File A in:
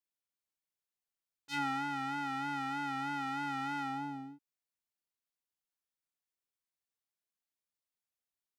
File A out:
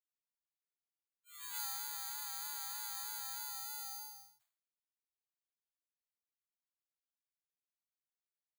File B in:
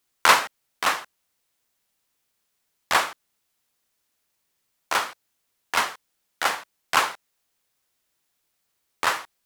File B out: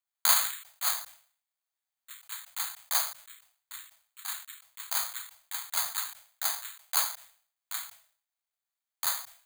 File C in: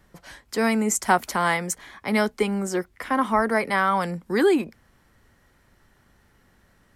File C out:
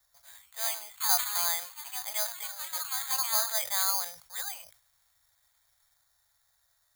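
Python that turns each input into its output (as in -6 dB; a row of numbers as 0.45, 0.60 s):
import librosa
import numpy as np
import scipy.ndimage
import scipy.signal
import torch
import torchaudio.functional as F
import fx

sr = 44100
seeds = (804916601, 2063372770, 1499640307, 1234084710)

y = scipy.signal.sosfilt(scipy.signal.ellip(3, 1.0, 40, [120.0, 640.0], 'bandstop', fs=sr, output='sos'), x)
y = fx.bass_treble(y, sr, bass_db=-10, treble_db=-12)
y = fx.echo_pitch(y, sr, ms=118, semitones=3, count=3, db_per_echo=-6.0)
y = (np.kron(scipy.signal.resample_poly(y, 1, 8), np.eye(8)[0]) * 8)[:len(y)]
y = fx.sustainer(y, sr, db_per_s=120.0)
y = F.gain(torch.from_numpy(y), -14.5).numpy()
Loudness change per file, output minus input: -4.0, -6.0, -5.5 LU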